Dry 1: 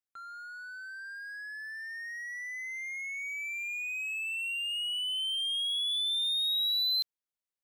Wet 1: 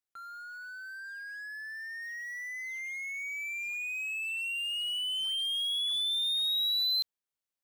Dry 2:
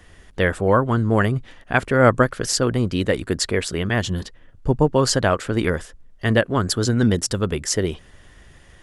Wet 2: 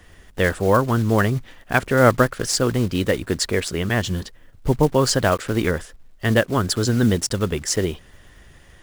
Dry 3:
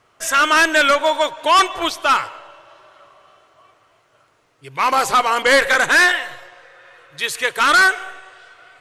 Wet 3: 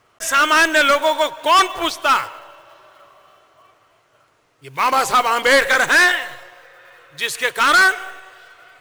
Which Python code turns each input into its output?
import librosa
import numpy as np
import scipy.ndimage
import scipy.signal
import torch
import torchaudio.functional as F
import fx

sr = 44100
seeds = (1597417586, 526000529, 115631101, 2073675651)

y = fx.block_float(x, sr, bits=5)